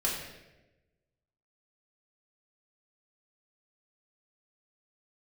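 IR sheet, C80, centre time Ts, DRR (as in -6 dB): 5.0 dB, 56 ms, -5.5 dB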